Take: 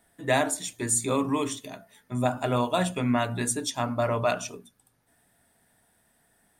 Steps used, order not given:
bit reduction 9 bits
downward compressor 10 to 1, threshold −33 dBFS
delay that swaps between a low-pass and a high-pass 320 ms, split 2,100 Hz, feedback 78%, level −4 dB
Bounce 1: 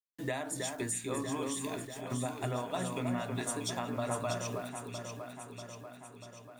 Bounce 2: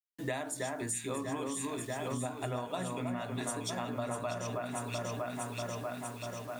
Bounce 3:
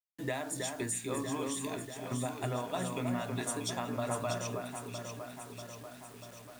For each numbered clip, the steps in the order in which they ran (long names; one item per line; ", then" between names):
bit reduction, then downward compressor, then delay that swaps between a low-pass and a high-pass
delay that swaps between a low-pass and a high-pass, then bit reduction, then downward compressor
downward compressor, then delay that swaps between a low-pass and a high-pass, then bit reduction